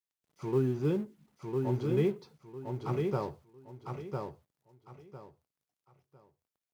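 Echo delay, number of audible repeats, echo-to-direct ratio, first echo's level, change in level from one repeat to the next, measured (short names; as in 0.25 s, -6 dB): 1.003 s, 3, -3.5 dB, -4.0 dB, -12.0 dB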